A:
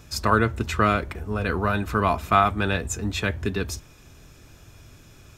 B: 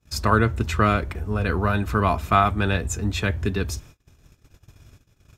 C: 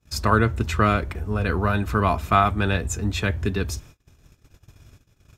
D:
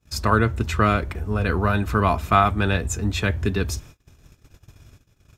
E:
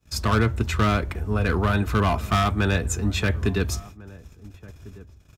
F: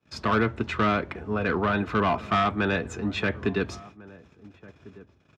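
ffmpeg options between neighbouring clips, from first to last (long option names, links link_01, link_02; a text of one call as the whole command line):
ffmpeg -i in.wav -af "agate=range=-32dB:threshold=-46dB:ratio=16:detection=peak,equalizer=frequency=63:width=0.46:gain=5" out.wav
ffmpeg -i in.wav -af anull out.wav
ffmpeg -i in.wav -af "dynaudnorm=framelen=450:gausssize=5:maxgain=4dB" out.wav
ffmpeg -i in.wav -filter_complex "[0:a]acrossover=split=270|3900[link_01][link_02][link_03];[link_02]asoftclip=type=hard:threshold=-20dB[link_04];[link_01][link_04][link_03]amix=inputs=3:normalize=0,asplit=2[link_05][link_06];[link_06]adelay=1399,volume=-20dB,highshelf=frequency=4000:gain=-31.5[link_07];[link_05][link_07]amix=inputs=2:normalize=0" out.wav
ffmpeg -i in.wav -af "highpass=180,lowpass=3200" out.wav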